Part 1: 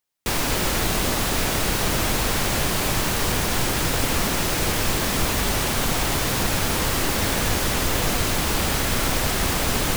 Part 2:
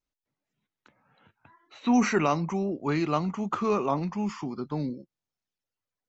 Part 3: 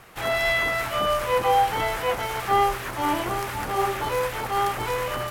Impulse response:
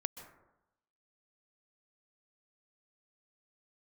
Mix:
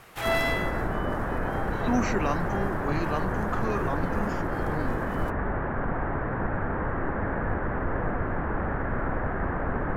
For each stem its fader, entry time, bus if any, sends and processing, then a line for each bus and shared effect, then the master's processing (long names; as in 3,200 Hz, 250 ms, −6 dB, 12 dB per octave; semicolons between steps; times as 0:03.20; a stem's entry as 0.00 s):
−3.5 dB, 0.00 s, no send, elliptic low-pass filter 1,700 Hz, stop band 80 dB
−4.5 dB, 0.00 s, no send, no processing
−1.5 dB, 0.00 s, no send, automatic ducking −18 dB, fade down 0.50 s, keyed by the second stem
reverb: not used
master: no processing